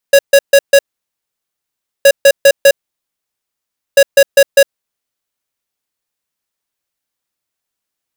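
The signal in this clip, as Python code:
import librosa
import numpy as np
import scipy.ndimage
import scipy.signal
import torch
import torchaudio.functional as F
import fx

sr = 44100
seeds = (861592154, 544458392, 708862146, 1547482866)

y = fx.beep_pattern(sr, wave='square', hz=556.0, on_s=0.06, off_s=0.14, beeps=4, pause_s=1.26, groups=3, level_db=-4.5)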